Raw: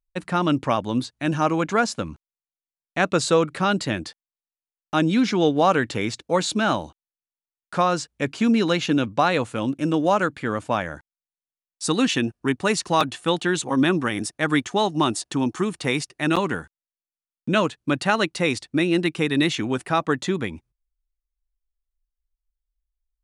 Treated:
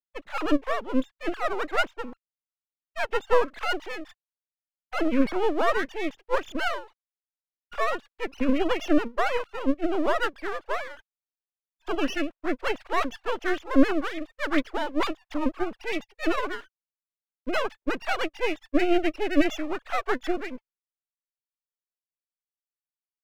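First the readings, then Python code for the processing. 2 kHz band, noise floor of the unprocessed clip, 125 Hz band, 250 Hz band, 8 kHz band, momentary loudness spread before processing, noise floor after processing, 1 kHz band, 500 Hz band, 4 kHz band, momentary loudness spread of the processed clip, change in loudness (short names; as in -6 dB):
-4.0 dB, under -85 dBFS, under -20 dB, -5.0 dB, -15.5 dB, 8 LU, under -85 dBFS, -5.5 dB, -4.0 dB, -8.5 dB, 10 LU, -5.0 dB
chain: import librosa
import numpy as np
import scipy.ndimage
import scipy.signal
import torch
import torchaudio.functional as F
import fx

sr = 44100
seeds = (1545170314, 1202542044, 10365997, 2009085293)

y = fx.sine_speech(x, sr)
y = np.maximum(y, 0.0)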